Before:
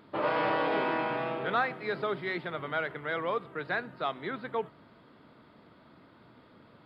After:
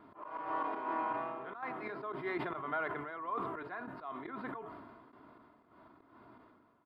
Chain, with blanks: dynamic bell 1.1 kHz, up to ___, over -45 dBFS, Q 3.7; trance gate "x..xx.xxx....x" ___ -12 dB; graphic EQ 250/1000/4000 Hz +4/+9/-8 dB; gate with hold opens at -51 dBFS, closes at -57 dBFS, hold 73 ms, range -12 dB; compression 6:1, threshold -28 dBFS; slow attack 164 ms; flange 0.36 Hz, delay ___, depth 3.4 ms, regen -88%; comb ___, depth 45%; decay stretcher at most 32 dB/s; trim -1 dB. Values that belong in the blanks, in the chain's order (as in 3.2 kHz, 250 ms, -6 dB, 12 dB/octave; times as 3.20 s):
+5 dB, 120 bpm, 1.3 ms, 2.9 ms